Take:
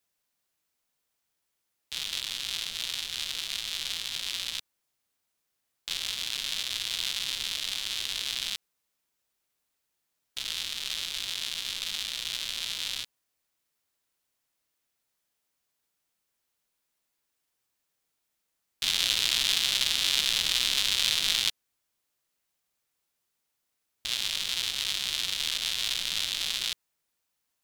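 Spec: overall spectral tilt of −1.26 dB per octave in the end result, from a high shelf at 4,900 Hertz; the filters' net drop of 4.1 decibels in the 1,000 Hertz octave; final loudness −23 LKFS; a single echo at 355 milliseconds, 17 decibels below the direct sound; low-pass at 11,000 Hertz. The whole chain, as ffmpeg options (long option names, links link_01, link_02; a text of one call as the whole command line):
ffmpeg -i in.wav -af "lowpass=11000,equalizer=frequency=1000:width_type=o:gain=-5,highshelf=frequency=4900:gain=-7.5,aecho=1:1:355:0.141,volume=8dB" out.wav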